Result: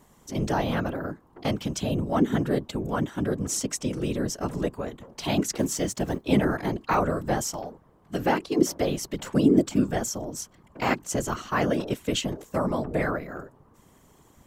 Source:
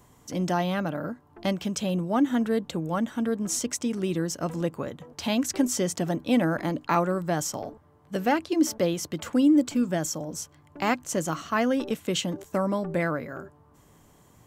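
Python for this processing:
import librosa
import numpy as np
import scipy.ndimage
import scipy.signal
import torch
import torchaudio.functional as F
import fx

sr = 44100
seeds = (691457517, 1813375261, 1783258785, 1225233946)

y = fx.law_mismatch(x, sr, coded='A', at=(5.55, 6.26))
y = fx.whisperise(y, sr, seeds[0])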